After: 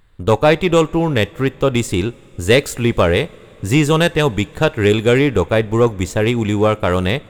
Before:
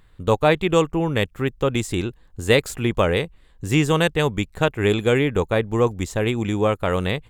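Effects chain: sample leveller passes 1; two-slope reverb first 0.27 s, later 4.3 s, from -19 dB, DRR 17 dB; gain +2 dB

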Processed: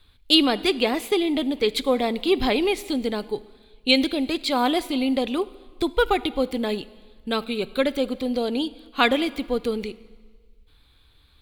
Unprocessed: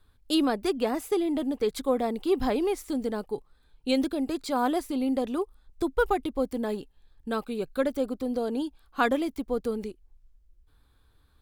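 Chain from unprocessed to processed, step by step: band shelf 3000 Hz +11 dB 1.3 oct; reverb RT60 1.5 s, pre-delay 6 ms, DRR 17 dB; gain +4 dB

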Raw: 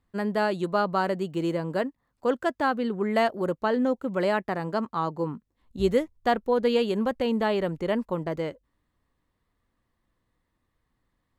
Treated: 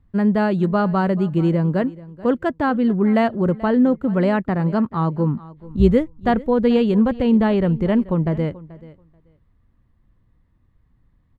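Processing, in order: tone controls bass +15 dB, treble -11 dB; on a send: feedback echo 0.434 s, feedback 15%, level -19.5 dB; on the sum: gain +3 dB

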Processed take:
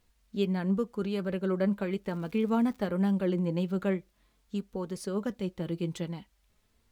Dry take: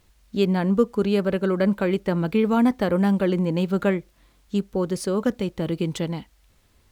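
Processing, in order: flange 0.43 Hz, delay 4.1 ms, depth 1.8 ms, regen +59%; 2.01–2.87 crackle 220/s -40 dBFS; gain -5.5 dB

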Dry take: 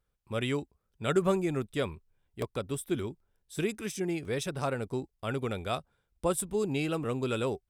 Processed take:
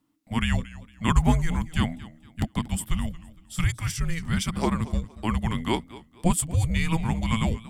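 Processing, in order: frequency shift -330 Hz; warbling echo 0.231 s, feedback 31%, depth 127 cents, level -18 dB; gain +7 dB

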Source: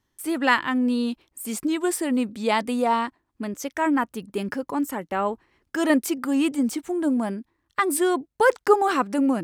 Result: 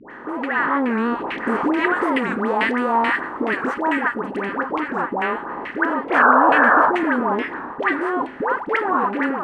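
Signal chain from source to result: per-bin compression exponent 0.4; compressor, threshold -20 dBFS, peak gain reduction 11 dB; dynamic EQ 570 Hz, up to -4 dB, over -38 dBFS, Q 0.9; AGC gain up to 11.5 dB; 1.85–4.3 bell 14000 Hz +11.5 dB 1.5 oct; 6.08–6.84 painted sound noise 430–1800 Hz -13 dBFS; dispersion highs, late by 0.107 s, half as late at 910 Hz; reverb RT60 0.60 s, pre-delay 3 ms, DRR 12.5 dB; LFO low-pass saw down 2.3 Hz 820–2500 Hz; record warp 45 rpm, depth 160 cents; gain -5.5 dB

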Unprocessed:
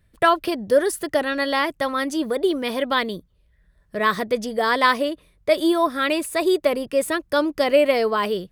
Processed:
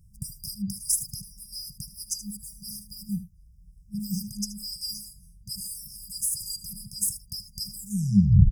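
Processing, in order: tape stop at the end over 0.74 s; echo 77 ms -13.5 dB; FFT band-reject 210–4800 Hz; gain +6.5 dB

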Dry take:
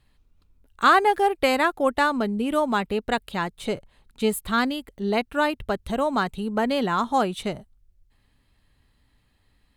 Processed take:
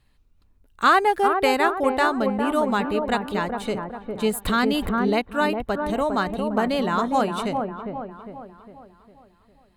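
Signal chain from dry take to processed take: notch 3300 Hz, Q 25; on a send: dark delay 0.405 s, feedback 46%, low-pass 1200 Hz, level -4.5 dB; 4.45–5.19 on the sum: fast leveller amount 70%

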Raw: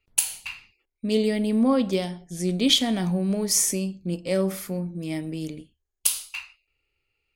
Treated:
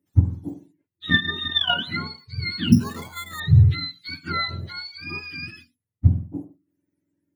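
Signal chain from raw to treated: spectrum mirrored in octaves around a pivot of 880 Hz; 1.05–1.76 transient shaper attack +11 dB, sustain -11 dB; 2.72–3.4 careless resampling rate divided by 8×, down filtered, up hold; gain -1 dB

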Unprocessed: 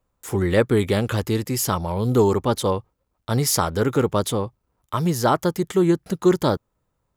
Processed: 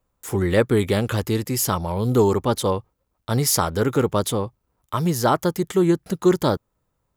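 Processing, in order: high shelf 11000 Hz +4 dB

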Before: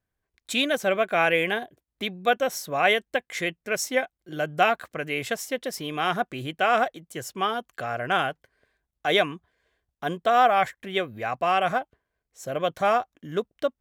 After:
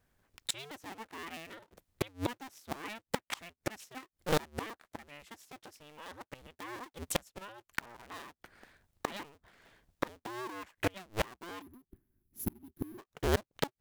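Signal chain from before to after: cycle switcher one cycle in 2, inverted; spectral gain 11.61–12.98, 400–10000 Hz -22 dB; flipped gate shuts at -26 dBFS, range -32 dB; gain +9 dB

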